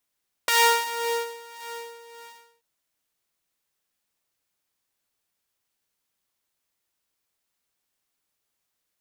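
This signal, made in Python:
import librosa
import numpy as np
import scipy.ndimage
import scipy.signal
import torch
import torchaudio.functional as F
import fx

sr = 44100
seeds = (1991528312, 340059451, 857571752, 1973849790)

y = fx.sub_patch_tremolo(sr, seeds[0], note=82, wave='saw', wave2='square', interval_st=-12, detune_cents=5, level2_db=-7, sub_db=-8, noise_db=-11.0, kind='highpass', cutoff_hz=170.0, q=0.88, env_oct=3.5, env_decay_s=0.32, env_sustain_pct=25, attack_ms=3.1, decay_s=0.77, sustain_db=-20.5, release_s=1.02, note_s=1.12, lfo_hz=1.8, tremolo_db=10.0)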